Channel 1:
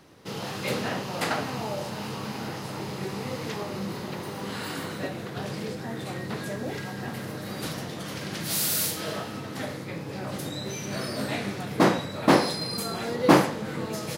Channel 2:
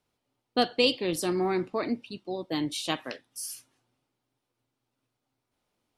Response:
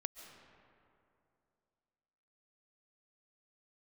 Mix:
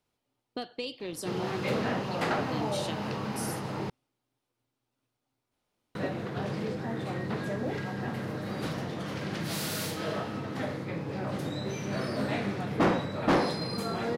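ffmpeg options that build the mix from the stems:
-filter_complex "[0:a]lowpass=f=2.1k:p=1,adelay=1000,volume=1dB,asplit=3[a][b][c];[a]atrim=end=3.9,asetpts=PTS-STARTPTS,afade=t=out:st=3.896:d=0.004:c=hsin[d];[b]atrim=start=3.9:end=5.95,asetpts=PTS-STARTPTS,volume=0[e];[c]atrim=start=5.95,asetpts=PTS-STARTPTS,afade=t=in:d=0.004:c=hsin[f];[d][e][f]concat=n=3:v=0:a=1[g];[1:a]acompressor=threshold=-33dB:ratio=4,volume=-1.5dB[h];[g][h]amix=inputs=2:normalize=0,asoftclip=type=tanh:threshold=-19dB"

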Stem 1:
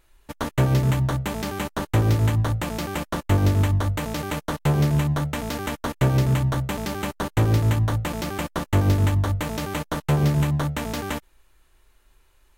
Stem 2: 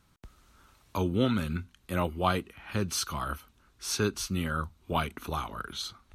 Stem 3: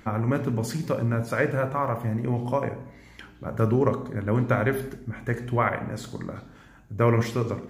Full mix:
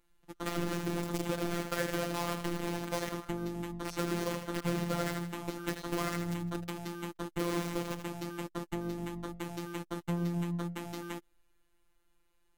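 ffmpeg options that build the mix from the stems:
-filter_complex "[0:a]volume=-10.5dB[a];[1:a]volume=-15.5dB,asplit=2[b][c];[c]volume=-8.5dB[d];[2:a]bandreject=f=400:w=12,adynamicequalizer=threshold=0.00891:dfrequency=270:dqfactor=5.7:tfrequency=270:tqfactor=5.7:attack=5:release=100:ratio=0.375:range=2:mode=cutabove:tftype=bell,acrusher=bits=3:mix=0:aa=0.000001,adelay=400,volume=-3dB,asplit=2[e][f];[f]volume=-13dB[g];[a][e]amix=inputs=2:normalize=0,equalizer=f=290:t=o:w=0.52:g=10,acompressor=threshold=-26dB:ratio=6,volume=0dB[h];[d][g]amix=inputs=2:normalize=0,aecho=0:1:79|158|237|316|395|474:1|0.45|0.202|0.0911|0.041|0.0185[i];[b][h][i]amix=inputs=3:normalize=0,afftfilt=real='hypot(re,im)*cos(PI*b)':imag='0':win_size=1024:overlap=0.75"

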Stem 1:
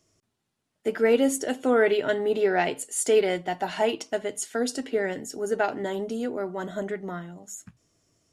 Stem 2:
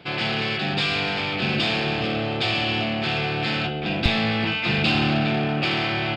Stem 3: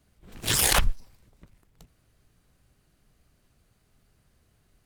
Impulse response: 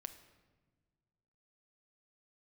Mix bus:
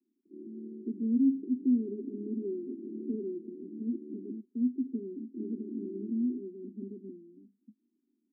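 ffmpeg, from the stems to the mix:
-filter_complex "[0:a]equalizer=f=240:w=2.1:g=12,volume=-9.5dB,asplit=2[a][b];[1:a]adelay=250,volume=-10dB,asplit=3[c][d][e];[c]atrim=end=4.4,asetpts=PTS-STARTPTS,afade=t=out:st=4.396:d=0.004:c=hsin[f];[d]atrim=start=4.4:end=5.37,asetpts=PTS-STARTPTS,volume=0[g];[e]atrim=start=5.37,asetpts=PTS-STARTPTS,afade=t=in:d=0.004:c=hsin[h];[f][g][h]concat=n=3:v=0:a=1[i];[2:a]adelay=2350,volume=-4dB[j];[b]apad=whole_len=282740[k];[i][k]sidechaincompress=threshold=-34dB:ratio=8:attack=16:release=240[l];[a][l][j]amix=inputs=3:normalize=0,asuperpass=centerf=280:order=12:qfactor=1.5"

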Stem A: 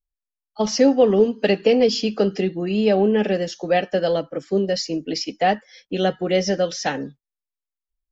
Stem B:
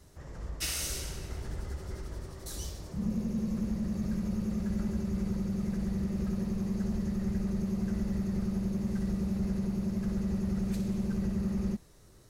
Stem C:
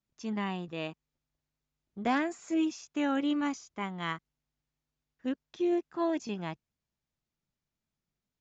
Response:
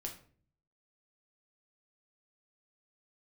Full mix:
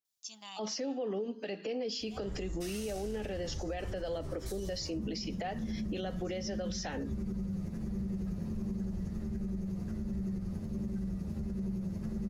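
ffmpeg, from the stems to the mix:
-filter_complex "[0:a]highpass=190,acompressor=threshold=-25dB:ratio=5,volume=-1.5dB,asplit=3[a][b][c];[b]volume=-14dB[d];[1:a]lowshelf=f=450:g=6.5,acompressor=threshold=-28dB:ratio=6,asplit=2[e][f];[f]adelay=9.4,afreqshift=-1.4[g];[e][g]amix=inputs=2:normalize=1,adelay=2000,volume=1.5dB[h];[2:a]lowshelf=f=570:t=q:w=3:g=-7.5,aexciter=amount=13.5:drive=5.3:freq=3k,adelay=50,volume=-18dB,asplit=2[i][j];[j]volume=-12dB[k];[c]apad=whole_len=372756[l];[i][l]sidechaincompress=threshold=-47dB:ratio=8:attack=16:release=727[m];[3:a]atrim=start_sample=2205[n];[d][k]amix=inputs=2:normalize=0[o];[o][n]afir=irnorm=-1:irlink=0[p];[a][h][m][p]amix=inputs=4:normalize=0,alimiter=level_in=5dB:limit=-24dB:level=0:latency=1:release=94,volume=-5dB"

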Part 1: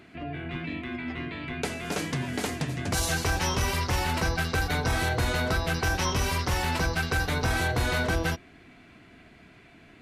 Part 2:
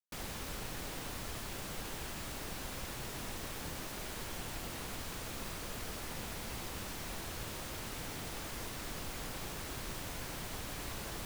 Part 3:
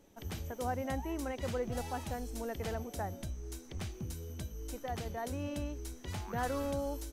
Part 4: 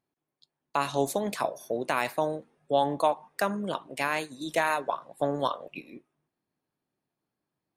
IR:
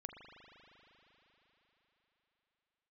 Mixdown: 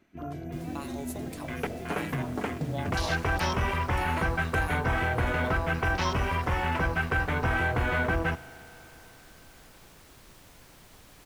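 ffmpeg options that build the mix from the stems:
-filter_complex "[0:a]afwtdn=0.02,equalizer=f=1.2k:t=o:w=1.4:g=3,volume=-3dB,asplit=2[a][b];[b]volume=-6.5dB[c];[1:a]adelay=400,volume=-11dB[d];[2:a]volume=-12.5dB[e];[3:a]highshelf=f=6k:g=12,volume=-15dB[f];[4:a]atrim=start_sample=2205[g];[c][g]afir=irnorm=-1:irlink=0[h];[a][d][e][f][h]amix=inputs=5:normalize=0"

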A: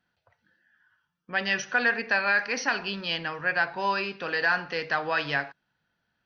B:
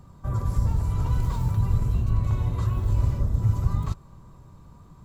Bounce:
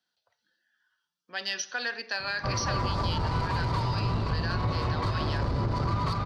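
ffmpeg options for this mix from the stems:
-filter_complex "[0:a]acrossover=split=240 6000:gain=0.224 1 0.2[a][b][c];[a][b][c]amix=inputs=3:normalize=0,aexciter=amount=4.5:drive=7.6:freq=3.4k,volume=-8dB,asplit=2[d][e];[1:a]lowpass=f=4.6k:t=q:w=11,highshelf=f=2.8k:g=-10,asplit=2[f][g];[g]highpass=f=720:p=1,volume=32dB,asoftclip=type=tanh:threshold=-10dB[h];[f][h]amix=inputs=2:normalize=0,lowpass=f=1.9k:p=1,volume=-6dB,adelay=2200,volume=-1dB,asplit=2[i][j];[j]volume=-3.5dB[k];[e]apad=whole_len=319602[l];[i][l]sidechaincompress=threshold=-37dB:ratio=8:attack=8.9:release=244[m];[k]aecho=0:1:240:1[n];[d][m][n]amix=inputs=3:normalize=0,acompressor=threshold=-25dB:ratio=6"

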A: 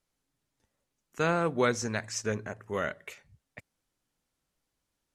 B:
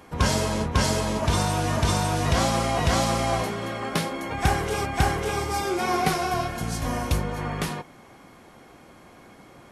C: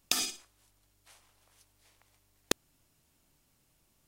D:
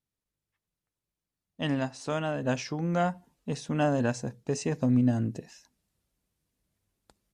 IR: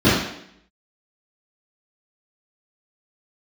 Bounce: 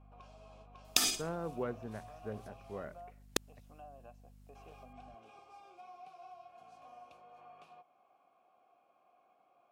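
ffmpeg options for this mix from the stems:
-filter_complex "[0:a]lowpass=1k,aeval=exprs='val(0)+0.00447*(sin(2*PI*50*n/s)+sin(2*PI*2*50*n/s)/2+sin(2*PI*3*50*n/s)/3+sin(2*PI*4*50*n/s)/4+sin(2*PI*5*50*n/s)/5)':c=same,volume=-10.5dB[a];[1:a]acrossover=split=180|3200[b][c][d];[b]acompressor=threshold=-36dB:ratio=4[e];[c]acompressor=threshold=-36dB:ratio=4[f];[d]acompressor=threshold=-35dB:ratio=4[g];[e][f][g]amix=inputs=3:normalize=0,volume=-10.5dB,asplit=3[h][i][j];[h]atrim=end=2.85,asetpts=PTS-STARTPTS,afade=t=out:st=2.846:d=0.004:c=hsin[k];[i]atrim=start=2.85:end=4.55,asetpts=PTS-STARTPTS,volume=0[l];[j]atrim=start=4.55,asetpts=PTS-STARTPTS,afade=t=in:d=0.004:c=hsin[m];[k][l][m]concat=n=3:v=0:a=1[n];[2:a]adelay=850,volume=1dB[o];[3:a]volume=-12dB,asplit=2[p][q];[q]apad=whole_len=217400[r];[o][r]sidechaincompress=threshold=-42dB:ratio=8:attack=20:release=1120[s];[n][p]amix=inputs=2:normalize=0,asplit=3[t][u][v];[t]bandpass=f=730:t=q:w=8,volume=0dB[w];[u]bandpass=f=1.09k:t=q:w=8,volume=-6dB[x];[v]bandpass=f=2.44k:t=q:w=8,volume=-9dB[y];[w][x][y]amix=inputs=3:normalize=0,alimiter=level_in=20.5dB:limit=-24dB:level=0:latency=1:release=361,volume=-20.5dB,volume=0dB[z];[a][s][z]amix=inputs=3:normalize=0"

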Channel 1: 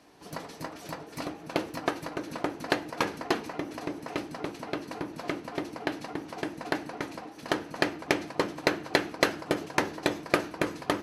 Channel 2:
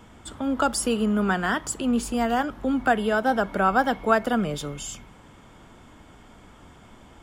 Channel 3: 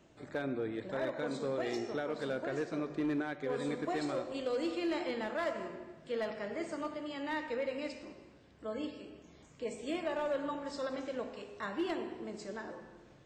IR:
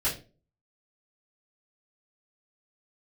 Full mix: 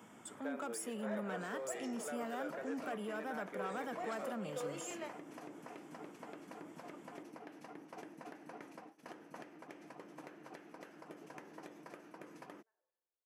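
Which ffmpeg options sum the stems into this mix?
-filter_complex "[0:a]agate=range=-33dB:threshold=-35dB:ratio=3:detection=peak,acompressor=threshold=-35dB:ratio=16,adelay=1600,volume=-3dB[a];[1:a]highshelf=f=5.3k:g=6,volume=-7dB,asplit=2[b][c];[2:a]highpass=f=440:w=0.5412,highpass=f=440:w=1.3066,adelay=100,volume=-6dB[d];[c]apad=whole_len=589081[e];[d][e]sidechaingate=range=-37dB:threshold=-51dB:ratio=16:detection=peak[f];[a][b]amix=inputs=2:normalize=0,asoftclip=type=tanh:threshold=-26dB,alimiter=level_in=13dB:limit=-24dB:level=0:latency=1:release=241,volume=-13dB,volume=0dB[g];[f][g]amix=inputs=2:normalize=0,highpass=f=150:w=0.5412,highpass=f=150:w=1.3066,equalizer=f=4.1k:w=2.3:g=-10"

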